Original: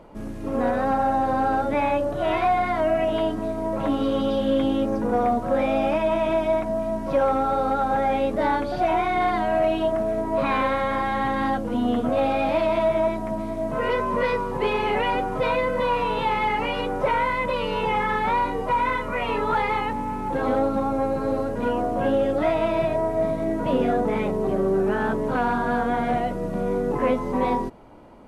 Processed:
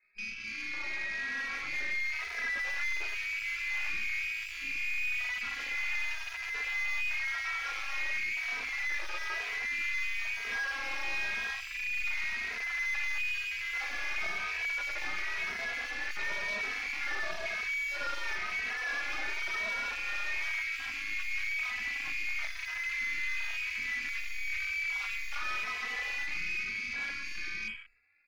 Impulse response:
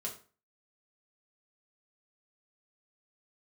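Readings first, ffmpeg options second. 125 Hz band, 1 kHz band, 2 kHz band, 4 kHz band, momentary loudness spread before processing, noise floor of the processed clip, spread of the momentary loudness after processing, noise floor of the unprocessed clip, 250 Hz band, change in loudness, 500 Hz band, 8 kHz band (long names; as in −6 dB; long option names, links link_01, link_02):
below −25 dB, −22.0 dB, +1.5 dB, −2.5 dB, 4 LU, −40 dBFS, 4 LU, −29 dBFS, −32.5 dB, −9.5 dB, −30.5 dB, can't be measured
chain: -filter_complex "[0:a]alimiter=limit=-20dB:level=0:latency=1:release=134,bandreject=frequency=50:width_type=h:width=6,bandreject=frequency=100:width_type=h:width=6,bandreject=frequency=150:width_type=h:width=6,bandreject=frequency=200:width_type=h:width=6,bandreject=frequency=250:width_type=h:width=6,bandreject=frequency=300:width_type=h:width=6,bandreject=frequency=350:width_type=h:width=6,bandreject=frequency=400:width_type=h:width=6,bandreject=frequency=450:width_type=h:width=6[link_01];[1:a]atrim=start_sample=2205[link_02];[link_01][link_02]afir=irnorm=-1:irlink=0,lowpass=frequency=2300:width_type=q:width=0.5098,lowpass=frequency=2300:width_type=q:width=0.6013,lowpass=frequency=2300:width_type=q:width=0.9,lowpass=frequency=2300:width_type=q:width=2.563,afreqshift=-2700,lowshelf=frequency=340:gain=-5.5,dynaudnorm=framelen=190:gausssize=21:maxgain=11dB,aeval=exprs='(tanh(35.5*val(0)+0.65)-tanh(0.65))/35.5':channel_layout=same,equalizer=frequency=110:width=2.2:gain=-9,asplit=4[link_03][link_04][link_05][link_06];[link_04]adelay=125,afreqshift=-30,volume=-17.5dB[link_07];[link_05]adelay=250,afreqshift=-60,volume=-27.4dB[link_08];[link_06]adelay=375,afreqshift=-90,volume=-37.3dB[link_09];[link_03][link_07][link_08][link_09]amix=inputs=4:normalize=0,afwtdn=0.01,asplit=2[link_10][link_11];[link_11]adelay=2.8,afreqshift=0.98[link_12];[link_10][link_12]amix=inputs=2:normalize=1"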